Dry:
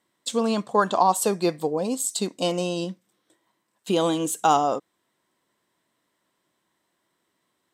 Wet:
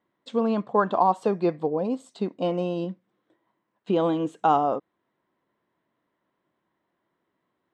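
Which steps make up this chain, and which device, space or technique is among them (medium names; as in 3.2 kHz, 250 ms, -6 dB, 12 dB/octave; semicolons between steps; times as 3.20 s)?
phone in a pocket (low-pass 3.1 kHz 12 dB/octave; treble shelf 2.4 kHz -11 dB); 2.13–2.54 s: treble shelf 4.5 kHz -5 dB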